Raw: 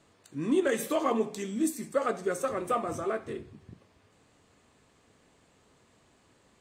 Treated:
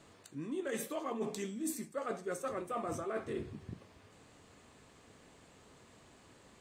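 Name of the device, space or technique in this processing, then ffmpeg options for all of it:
compression on the reversed sound: -af "areverse,acompressor=threshold=-38dB:ratio=16,areverse,volume=3.5dB"

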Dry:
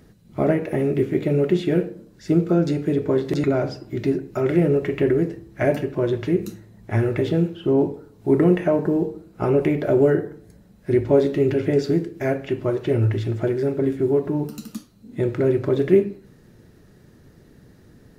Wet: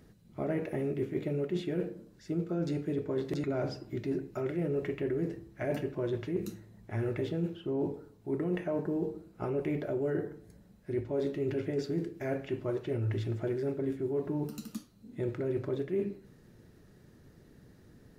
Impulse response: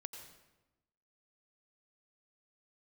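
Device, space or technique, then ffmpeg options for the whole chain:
compression on the reversed sound: -af "areverse,acompressor=threshold=-22dB:ratio=6,areverse,volume=-7dB"

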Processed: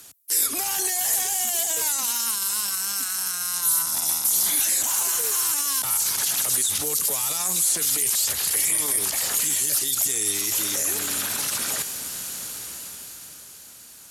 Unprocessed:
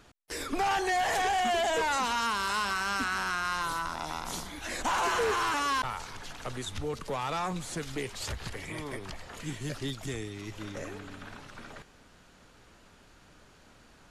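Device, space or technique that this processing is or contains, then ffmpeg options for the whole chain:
FM broadcast chain: -filter_complex "[0:a]highpass=73,dynaudnorm=framelen=100:gausssize=31:maxgain=15dB,acrossover=split=84|280|5100[link_01][link_02][link_03][link_04];[link_01]acompressor=threshold=-58dB:ratio=4[link_05];[link_02]acompressor=threshold=-42dB:ratio=4[link_06];[link_03]acompressor=threshold=-29dB:ratio=4[link_07];[link_04]acompressor=threshold=-36dB:ratio=4[link_08];[link_05][link_06][link_07][link_08]amix=inputs=4:normalize=0,aemphasis=mode=production:type=75fm,alimiter=limit=-23.5dB:level=0:latency=1:release=25,asoftclip=type=hard:threshold=-26dB,lowpass=frequency=15000:width=0.5412,lowpass=frequency=15000:width=1.3066,aemphasis=mode=production:type=75fm"

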